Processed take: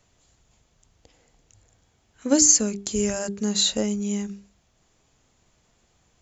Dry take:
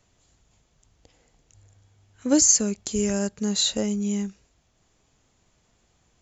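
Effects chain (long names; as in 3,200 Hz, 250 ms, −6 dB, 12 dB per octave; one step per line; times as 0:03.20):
mains-hum notches 50/100/150/200/250/300/350/400 Hz
level +1.5 dB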